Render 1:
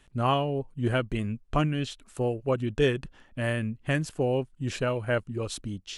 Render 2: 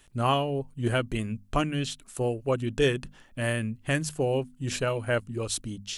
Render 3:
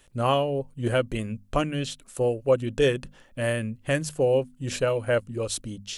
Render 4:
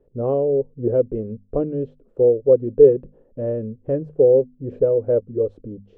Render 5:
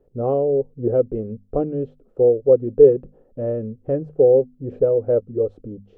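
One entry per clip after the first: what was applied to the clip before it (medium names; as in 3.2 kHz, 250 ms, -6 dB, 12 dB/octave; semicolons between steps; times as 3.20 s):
treble shelf 5.7 kHz +11.5 dB; hum notches 50/100/150/200/250 Hz
peaking EQ 530 Hz +8.5 dB 0.35 oct
resonant low-pass 450 Hz, resonance Q 4.9; trim -1 dB
small resonant body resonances 760/1300 Hz, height 8 dB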